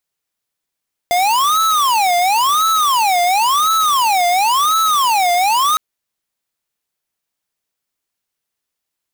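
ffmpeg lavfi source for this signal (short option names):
-f lavfi -i "aevalsrc='0.2*(2*lt(mod((1005*t-305/(2*PI*0.95)*sin(2*PI*0.95*t)),1),0.5)-1)':d=4.66:s=44100"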